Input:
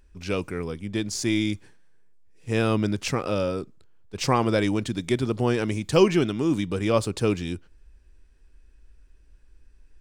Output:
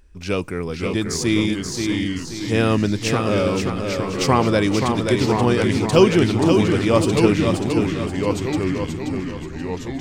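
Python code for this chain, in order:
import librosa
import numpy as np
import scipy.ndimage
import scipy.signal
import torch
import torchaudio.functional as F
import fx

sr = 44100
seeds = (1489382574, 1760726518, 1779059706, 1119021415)

y = fx.echo_pitch(x, sr, ms=479, semitones=-2, count=3, db_per_echo=-6.0)
y = fx.echo_feedback(y, sr, ms=530, feedback_pct=38, wet_db=-5.5)
y = F.gain(torch.from_numpy(y), 4.5).numpy()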